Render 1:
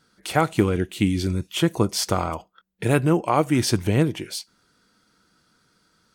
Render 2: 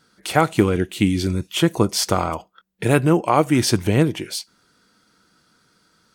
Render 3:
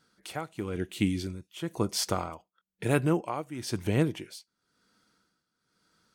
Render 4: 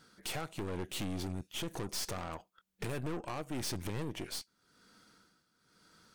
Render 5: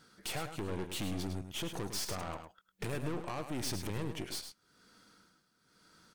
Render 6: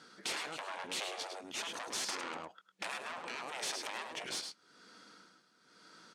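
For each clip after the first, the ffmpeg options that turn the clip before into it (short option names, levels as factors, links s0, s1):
-af "lowshelf=f=78:g=-5.5,volume=1.5"
-af "tremolo=f=1:d=0.8,volume=0.376"
-af "acompressor=threshold=0.0158:ratio=8,aeval=exprs='(tanh(200*val(0)+0.8)-tanh(0.8))/200':c=same,volume=3.55"
-af "aecho=1:1:105:0.376"
-af "afftfilt=real='re*lt(hypot(re,im),0.0251)':imag='im*lt(hypot(re,im),0.0251)':win_size=1024:overlap=0.75,highpass=250,lowpass=7000,volume=2"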